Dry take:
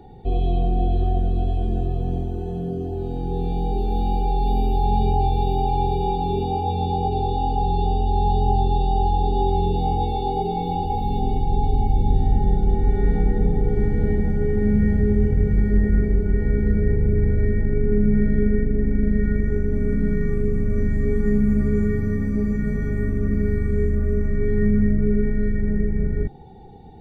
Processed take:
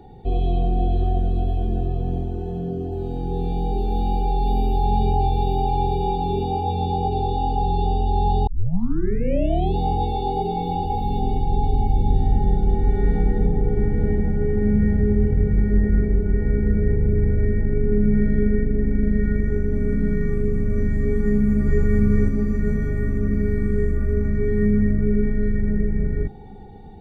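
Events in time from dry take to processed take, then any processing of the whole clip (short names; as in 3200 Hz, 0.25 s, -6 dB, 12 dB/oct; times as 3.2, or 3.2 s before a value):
1.4–2.92 decimation joined by straight lines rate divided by 3×
8.47 tape start 1.29 s
13.47–18.02 high shelf 4000 Hz -9.5 dB
21.22–21.83 echo throw 0.45 s, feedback 45%, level -1 dB
23.24–23.75 echo throw 0.32 s, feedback 80%, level -8.5 dB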